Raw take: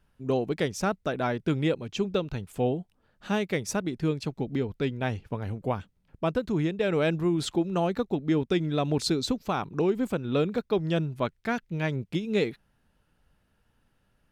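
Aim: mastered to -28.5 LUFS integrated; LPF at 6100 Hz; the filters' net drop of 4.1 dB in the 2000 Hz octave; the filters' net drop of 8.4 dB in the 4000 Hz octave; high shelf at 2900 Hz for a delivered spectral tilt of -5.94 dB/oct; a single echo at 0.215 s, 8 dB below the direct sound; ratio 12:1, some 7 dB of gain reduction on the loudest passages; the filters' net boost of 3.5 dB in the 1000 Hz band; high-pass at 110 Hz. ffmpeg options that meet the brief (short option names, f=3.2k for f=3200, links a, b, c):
-af "highpass=110,lowpass=6.1k,equalizer=f=1k:t=o:g=7,equalizer=f=2k:t=o:g=-6,highshelf=f=2.9k:g=-4,equalizer=f=4k:t=o:g=-5,acompressor=threshold=-27dB:ratio=12,aecho=1:1:215:0.398,volume=4.5dB"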